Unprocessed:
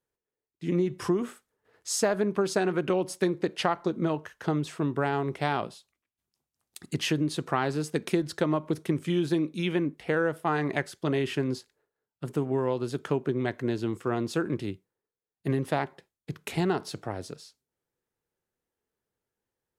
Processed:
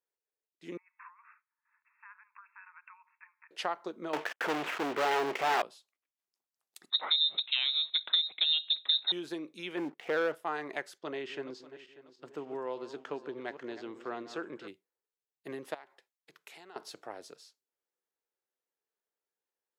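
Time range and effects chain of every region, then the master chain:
0:00.77–0:03.51: downward compressor 2 to 1, threshold −40 dBFS + linear-phase brick-wall band-pass 870–2,700 Hz
0:04.13–0:05.62: variable-slope delta modulation 16 kbit/s + leveller curve on the samples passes 5 + low-shelf EQ 150 Hz −9.5 dB
0:06.90–0:09.12: low-shelf EQ 220 Hz +11 dB + voice inversion scrambler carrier 3,900 Hz
0:09.77–0:10.35: Butterworth low-pass 3,800 Hz + leveller curve on the samples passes 2
0:10.98–0:14.68: feedback delay that plays each chunk backwards 295 ms, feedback 52%, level −12 dB + moving average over 4 samples
0:15.74–0:16.76: low-shelf EQ 470 Hz −10 dB + downward compressor 3 to 1, threshold −42 dBFS
whole clip: high-pass filter 440 Hz 12 dB per octave; parametric band 9,300 Hz −4 dB 0.26 octaves; level −6.5 dB

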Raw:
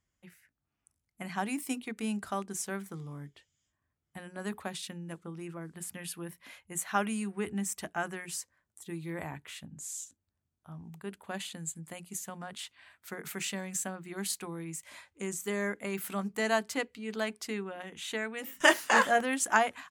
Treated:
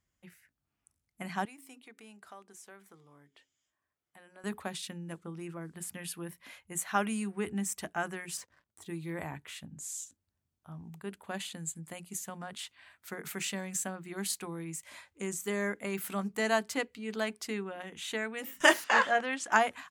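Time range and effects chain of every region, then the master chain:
0:01.45–0:04.44: hum removal 90.86 Hz, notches 4 + downward compressor 2 to 1, threshold −56 dBFS + bass and treble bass −14 dB, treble −3 dB
0:08.37–0:08.86: low-pass filter 1,500 Hz 6 dB per octave + leveller curve on the samples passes 3
0:18.84–0:19.52: low-pass filter 4,900 Hz + low-shelf EQ 380 Hz −9 dB
whole clip: no processing

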